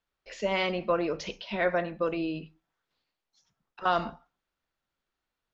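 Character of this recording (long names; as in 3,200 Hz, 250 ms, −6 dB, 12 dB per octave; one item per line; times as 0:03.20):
background noise floor −87 dBFS
spectral slope −3.0 dB per octave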